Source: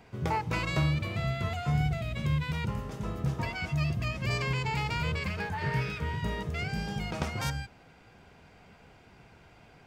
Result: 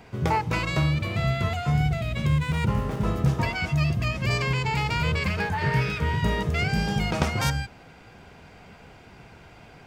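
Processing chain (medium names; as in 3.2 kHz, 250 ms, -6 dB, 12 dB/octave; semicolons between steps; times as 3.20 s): 2.28–3.07 s: median filter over 9 samples; gain riding 0.5 s; trim +6.5 dB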